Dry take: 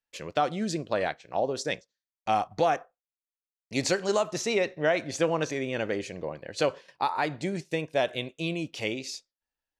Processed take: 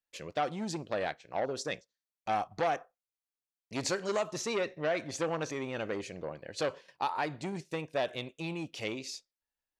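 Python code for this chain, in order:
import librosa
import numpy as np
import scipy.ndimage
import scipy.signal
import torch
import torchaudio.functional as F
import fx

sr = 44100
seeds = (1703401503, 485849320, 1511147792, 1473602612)

y = fx.transformer_sat(x, sr, knee_hz=1000.0)
y = F.gain(torch.from_numpy(y), -4.0).numpy()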